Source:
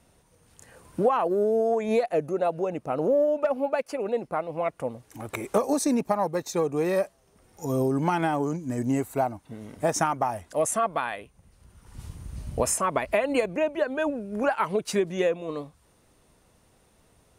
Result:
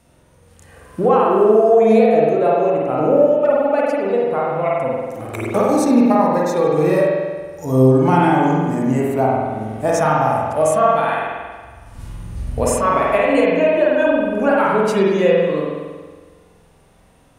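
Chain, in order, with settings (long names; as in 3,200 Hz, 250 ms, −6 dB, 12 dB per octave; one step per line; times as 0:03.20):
spring reverb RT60 1.5 s, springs 46 ms, chirp 60 ms, DRR −4 dB
harmonic and percussive parts rebalanced harmonic +6 dB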